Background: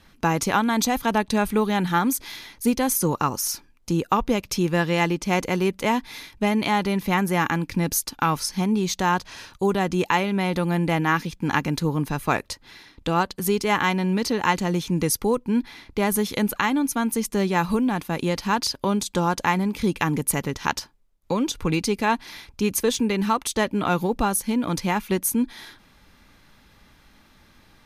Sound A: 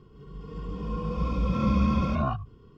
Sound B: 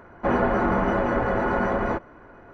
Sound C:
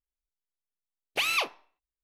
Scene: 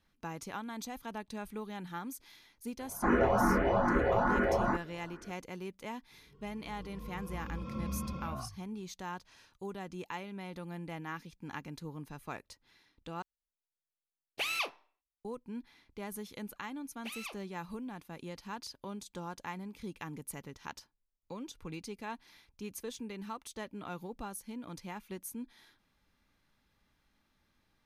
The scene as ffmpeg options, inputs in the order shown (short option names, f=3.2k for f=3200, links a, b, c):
-filter_complex "[3:a]asplit=2[a][b];[0:a]volume=-20dB[c];[2:a]asplit=2[d][e];[e]afreqshift=2.4[f];[d][f]amix=inputs=2:normalize=1[g];[c]asplit=2[h][i];[h]atrim=end=13.224[j];[a]atrim=end=2.03,asetpts=PTS-STARTPTS,volume=-7dB[k];[i]atrim=start=15.246[l];[g]atrim=end=2.53,asetpts=PTS-STARTPTS,volume=-2.5dB,afade=t=in:d=0.004:c=hsin,afade=t=out:st=2.526:d=0.004:c=hsin,adelay=2790[m];[1:a]atrim=end=2.77,asetpts=PTS-STARTPTS,volume=-14.5dB,afade=t=in:d=0.004:c=hsin,afade=t=out:st=2.766:d=0.004:c=hsin,adelay=6120[n];[b]atrim=end=2.03,asetpts=PTS-STARTPTS,volume=-17.5dB,afade=t=in:d=0.004:c=hsin,afade=t=out:st=2.026:d=0.004:c=hsin,adelay=700308S[o];[j][k]acrossfade=d=0.004:c1=hsin:c2=hsin[p];[p][l]acrossfade=d=0.004:c1=hsin:c2=hsin[q];[q][m][n][o]amix=inputs=4:normalize=0"